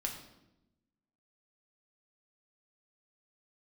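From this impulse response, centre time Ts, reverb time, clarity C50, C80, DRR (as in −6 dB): 25 ms, 0.90 s, 7.0 dB, 9.5 dB, 1.0 dB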